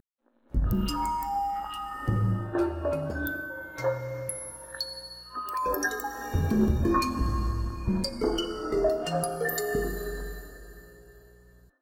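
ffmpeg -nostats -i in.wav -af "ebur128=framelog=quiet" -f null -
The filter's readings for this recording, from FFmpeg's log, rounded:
Integrated loudness:
  I:         -29.7 LUFS
  Threshold: -40.2 LUFS
Loudness range:
  LRA:         4.4 LU
  Threshold: -49.8 LUFS
  LRA low:   -32.3 LUFS
  LRA high:  -27.9 LUFS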